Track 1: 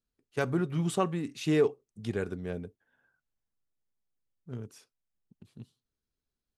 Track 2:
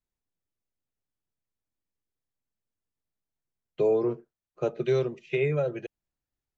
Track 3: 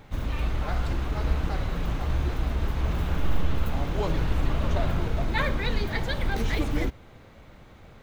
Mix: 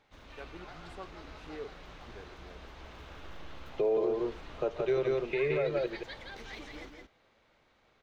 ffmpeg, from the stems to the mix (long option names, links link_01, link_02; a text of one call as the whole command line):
ffmpeg -i stem1.wav -i stem2.wav -i stem3.wav -filter_complex "[0:a]volume=-16dB[link_01];[1:a]volume=2.5dB,asplit=2[link_02][link_03];[link_03]volume=-3.5dB[link_04];[2:a]equalizer=frequency=5400:width_type=o:width=1.7:gain=13,volume=-16dB,asplit=2[link_05][link_06];[link_06]volume=-4.5dB[link_07];[link_04][link_07]amix=inputs=2:normalize=0,aecho=0:1:169:1[link_08];[link_01][link_02][link_05][link_08]amix=inputs=4:normalize=0,bass=frequency=250:gain=-12,treble=frequency=4000:gain=-12,alimiter=limit=-21dB:level=0:latency=1:release=254" out.wav